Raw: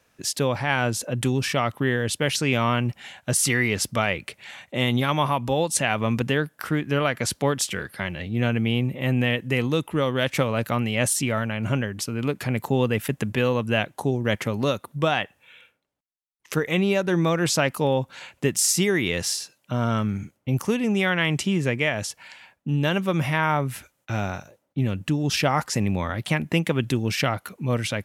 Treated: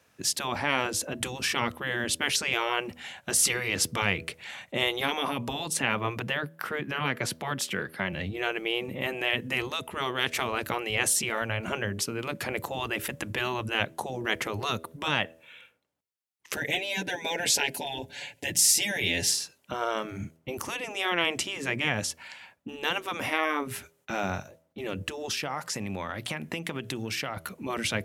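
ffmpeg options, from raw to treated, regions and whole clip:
ffmpeg -i in.wav -filter_complex "[0:a]asettb=1/sr,asplit=3[link_01][link_02][link_03];[link_01]atrim=end=5.734[link_04];[link_02]atrim=start=5.73:end=8.13,asetpts=PTS-STARTPTS,afade=type=in:duration=0.004:curve=qsin,afade=type=out:start_time=2.396:duration=0.004:curve=qsin,deesser=0.25,highpass=150,equalizer=frequency=7500:width_type=o:width=1.8:gain=-7.5[link_05];[link_03]atrim=start=8.126[link_06];[link_04][link_05]acrossfade=duration=0.004:curve1=hsin:curve2=qsin[link_07];[link_07][link_06]acrossfade=duration=0.004:curve1=qsin:curve2=hsin,asettb=1/sr,asplit=3[link_08][link_09][link_10];[link_08]atrim=end=16.564[link_11];[link_09]atrim=start=16.56:end=19.31,asetpts=PTS-STARTPTS,afade=type=in:duration=0.004:curve=qsin,afade=type=out:start_time=2.746:duration=0.004:curve=qsin,asuperstop=centerf=1200:order=4:qfactor=1.6,aecho=1:1:7:0.78,atrim=end_sample=121275[link_12];[link_10]atrim=start=19.306[link_13];[link_11][link_12]acrossfade=duration=0.004:curve1=hsin:curve2=qsin[link_14];[link_14][link_13]acrossfade=duration=0.004:curve1=qsin:curve2=hsin,asettb=1/sr,asplit=3[link_15][link_16][link_17];[link_15]atrim=end=25.314[link_18];[link_16]atrim=start=25.31:end=27.37,asetpts=PTS-STARTPTS,afade=type=in:duration=0.004:curve=qsin,afade=type=out:start_time=2.056:duration=0.004:curve=qsin,lowshelf=frequency=240:gain=-11,bandreject=frequency=60:width_type=h:width=6,bandreject=frequency=120:width_type=h:width=6,bandreject=frequency=180:width_type=h:width=6,acompressor=threshold=-28dB:ratio=5:attack=3.2:release=140:knee=1:detection=peak[link_19];[link_17]atrim=start=27.366[link_20];[link_18][link_19]acrossfade=duration=0.004:curve1=hsin:curve2=qsin[link_21];[link_21][link_20]acrossfade=duration=0.004:curve1=qsin:curve2=hsin,highpass=frequency=61:width=0.5412,highpass=frequency=61:width=1.3066,afftfilt=real='re*lt(hypot(re,im),0.282)':imag='im*lt(hypot(re,im),0.282)':win_size=1024:overlap=0.75,bandreject=frequency=81.21:width_type=h:width=4,bandreject=frequency=162.42:width_type=h:width=4,bandreject=frequency=243.63:width_type=h:width=4,bandreject=frequency=324.84:width_type=h:width=4,bandreject=frequency=406.05:width_type=h:width=4,bandreject=frequency=487.26:width_type=h:width=4,bandreject=frequency=568.47:width_type=h:width=4,bandreject=frequency=649.68:width_type=h:width=4" out.wav

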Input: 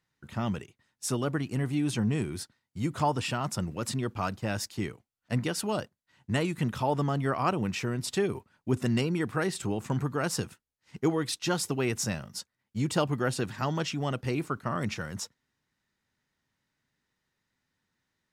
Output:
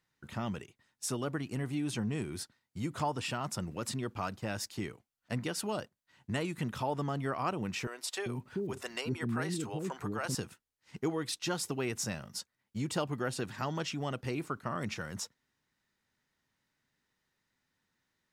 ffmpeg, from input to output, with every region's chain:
ffmpeg -i in.wav -filter_complex "[0:a]asettb=1/sr,asplit=3[link_01][link_02][link_03];[link_01]atrim=end=7.874[link_04];[link_02]atrim=start=7.87:end=10.35,asetpts=PTS-STARTPTS,afade=type=in:duration=0.004:curve=qsin,afade=type=out:start_time=2.476:duration=0.004:curve=qsin,acompressor=mode=upward:threshold=-36dB:ratio=2.5:attack=3.2:release=140:knee=2.83:detection=peak,acrossover=split=440[link_05][link_06];[link_05]adelay=390[link_07];[link_07][link_06]amix=inputs=2:normalize=0,atrim=end_sample=109368[link_08];[link_03]atrim=start=10.346[link_09];[link_04][link_08]acrossfade=duration=0.004:curve1=hsin:curve2=qsin[link_10];[link_10][link_09]acrossfade=duration=0.004:curve1=qsin:curve2=hsin,equalizer=frequency=88:width=0.46:gain=-3,acompressor=threshold=-39dB:ratio=1.5" out.wav

